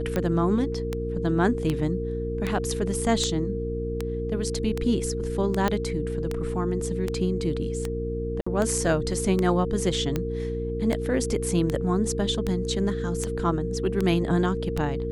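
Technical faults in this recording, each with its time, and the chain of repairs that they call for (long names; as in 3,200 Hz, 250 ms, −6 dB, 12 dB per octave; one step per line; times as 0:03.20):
mains hum 60 Hz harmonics 6 −31 dBFS
scratch tick 78 rpm −13 dBFS
whistle 460 Hz −30 dBFS
0:05.68: click −11 dBFS
0:08.41–0:08.46: drop-out 55 ms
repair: click removal
hum removal 60 Hz, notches 6
notch filter 460 Hz, Q 30
repair the gap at 0:08.41, 55 ms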